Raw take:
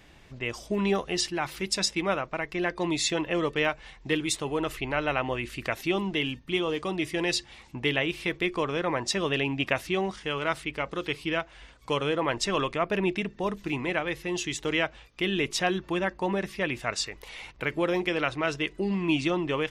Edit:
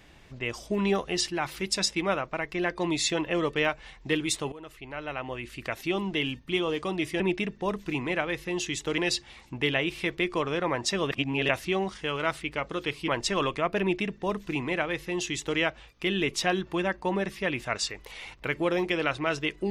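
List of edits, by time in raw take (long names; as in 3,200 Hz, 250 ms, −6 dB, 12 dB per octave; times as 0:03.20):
0:04.52–0:06.27: fade in, from −18 dB
0:09.33–0:09.71: reverse
0:11.30–0:12.25: remove
0:12.98–0:14.76: duplicate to 0:07.20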